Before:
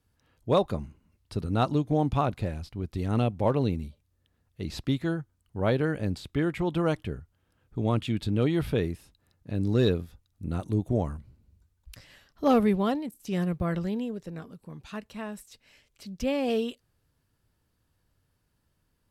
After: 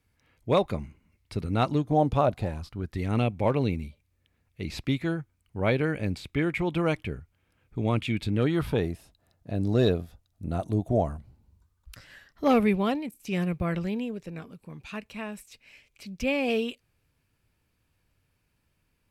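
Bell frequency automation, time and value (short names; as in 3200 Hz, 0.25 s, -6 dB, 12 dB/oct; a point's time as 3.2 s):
bell +11.5 dB 0.37 oct
1.74 s 2200 Hz
2.09 s 440 Hz
3.07 s 2300 Hz
8.28 s 2300 Hz
8.88 s 670 Hz
11.14 s 670 Hz
12.6 s 2400 Hz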